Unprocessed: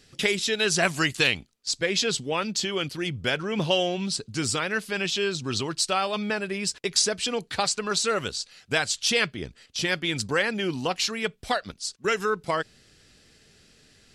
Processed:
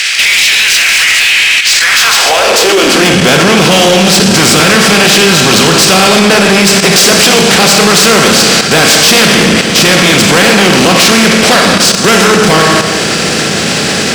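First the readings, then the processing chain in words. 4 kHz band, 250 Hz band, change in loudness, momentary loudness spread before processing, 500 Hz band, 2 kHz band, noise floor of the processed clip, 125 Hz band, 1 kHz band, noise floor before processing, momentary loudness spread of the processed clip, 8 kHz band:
+22.0 dB, +22.5 dB, +21.0 dB, 7 LU, +19.5 dB, +21.5 dB, -11 dBFS, +21.5 dB, +21.0 dB, -59 dBFS, 2 LU, +22.0 dB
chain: spectral levelling over time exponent 0.4; Schroeder reverb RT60 1.8 s, combs from 28 ms, DRR 2.5 dB; hard clipper -17.5 dBFS, distortion -9 dB; high-pass sweep 2.2 kHz -> 170 Hz, 1.68–3.17 s; resonant low shelf 100 Hz +10.5 dB, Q 1.5; level held to a coarse grid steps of 12 dB; waveshaping leveller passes 2; loudness maximiser +19.5 dB; trim -1 dB

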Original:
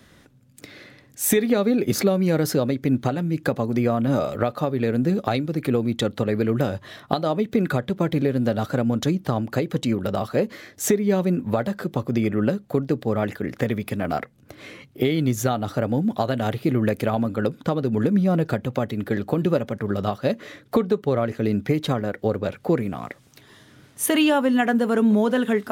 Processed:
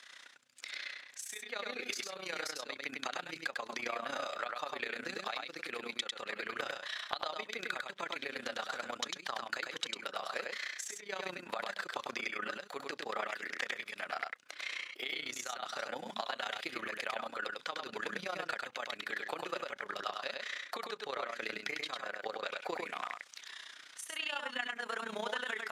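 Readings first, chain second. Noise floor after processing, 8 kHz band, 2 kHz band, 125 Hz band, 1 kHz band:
-57 dBFS, -13.5 dB, -4.5 dB, -38.0 dB, -10.5 dB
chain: high-pass 1.4 kHz 12 dB/octave; treble shelf 4.6 kHz +7 dB; compression 6:1, threshold -38 dBFS, peak gain reduction 22.5 dB; AM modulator 30 Hz, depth 65%; distance through air 88 m; delay 100 ms -3.5 dB; trim +6.5 dB

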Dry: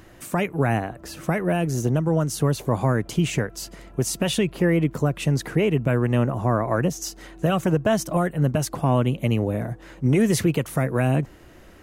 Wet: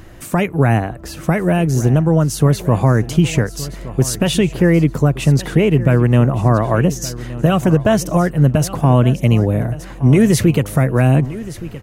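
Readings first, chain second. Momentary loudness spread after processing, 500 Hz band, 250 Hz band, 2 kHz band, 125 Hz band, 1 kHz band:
8 LU, +6.0 dB, +8.0 dB, +5.5 dB, +9.5 dB, +6.0 dB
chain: bass shelf 120 Hz +9 dB; feedback delay 1170 ms, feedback 28%, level -16 dB; trim +5.5 dB

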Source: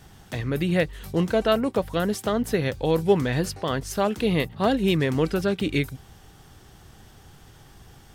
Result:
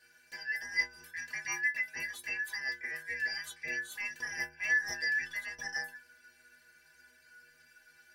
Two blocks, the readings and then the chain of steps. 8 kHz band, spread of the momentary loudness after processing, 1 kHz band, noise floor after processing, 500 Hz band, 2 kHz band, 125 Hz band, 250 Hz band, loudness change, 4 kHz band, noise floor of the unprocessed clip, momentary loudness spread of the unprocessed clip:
-4.0 dB, 9 LU, -21.5 dB, -64 dBFS, -32.5 dB, +2.5 dB, under -35 dB, -35.5 dB, -10.0 dB, -10.0 dB, -51 dBFS, 6 LU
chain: four frequency bands reordered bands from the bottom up 3142; inharmonic resonator 73 Hz, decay 0.66 s, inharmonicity 0.03

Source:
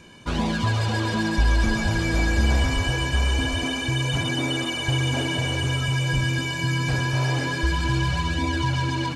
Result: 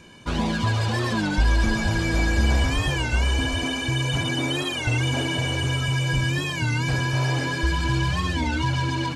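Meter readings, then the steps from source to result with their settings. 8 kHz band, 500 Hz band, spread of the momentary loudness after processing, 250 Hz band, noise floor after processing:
0.0 dB, 0.0 dB, 3 LU, 0.0 dB, -29 dBFS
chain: warped record 33 1/3 rpm, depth 160 cents

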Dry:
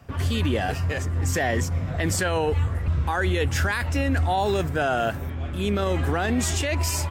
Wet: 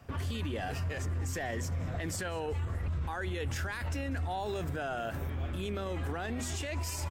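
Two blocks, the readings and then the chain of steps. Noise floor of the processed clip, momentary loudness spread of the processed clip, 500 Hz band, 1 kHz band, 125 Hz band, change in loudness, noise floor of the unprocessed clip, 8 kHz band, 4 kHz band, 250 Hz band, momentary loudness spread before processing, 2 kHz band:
-38 dBFS, 1 LU, -12.0 dB, -12.0 dB, -10.0 dB, -11.0 dB, -31 dBFS, -11.5 dB, -11.5 dB, -12.0 dB, 3 LU, -12.0 dB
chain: hum notches 50/100/150/200/250 Hz; peak limiter -23.5 dBFS, peak gain reduction 9.5 dB; frequency-shifting echo 195 ms, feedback 60%, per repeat -100 Hz, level -21.5 dB; trim -4 dB

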